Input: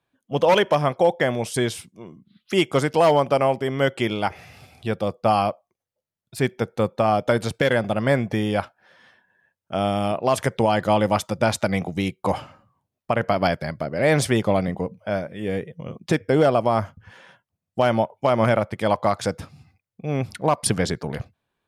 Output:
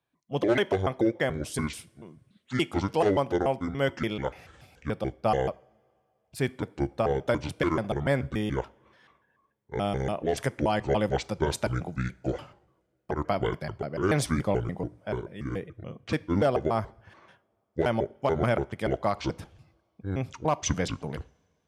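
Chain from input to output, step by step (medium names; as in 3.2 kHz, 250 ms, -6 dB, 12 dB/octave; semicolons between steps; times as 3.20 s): pitch shift switched off and on -7.5 st, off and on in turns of 144 ms; two-slope reverb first 0.5 s, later 2.6 s, from -20 dB, DRR 19 dB; trim -6 dB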